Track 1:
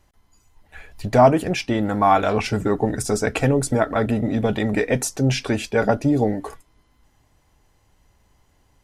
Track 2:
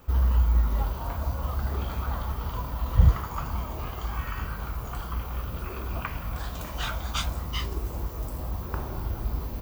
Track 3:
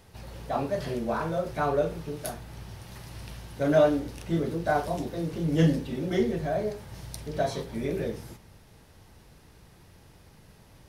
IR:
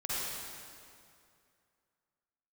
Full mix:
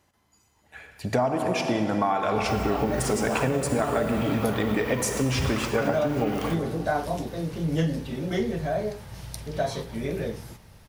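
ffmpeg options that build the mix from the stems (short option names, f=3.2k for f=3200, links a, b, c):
-filter_complex "[0:a]highpass=110,volume=-3.5dB,asplit=3[a][b][c];[b]volume=-9dB[d];[1:a]highpass=120,equalizer=f=2.4k:t=o:w=1.3:g=13,adelay=2400,volume=-1.5dB[e];[2:a]equalizer=f=330:w=1.5:g=-4,adelay=2200,volume=2.5dB[f];[c]apad=whole_len=529790[g];[e][g]sidechaingate=range=-33dB:threshold=-38dB:ratio=16:detection=peak[h];[3:a]atrim=start_sample=2205[i];[d][i]afir=irnorm=-1:irlink=0[j];[a][h][f][j]amix=inputs=4:normalize=0,acompressor=threshold=-20dB:ratio=12"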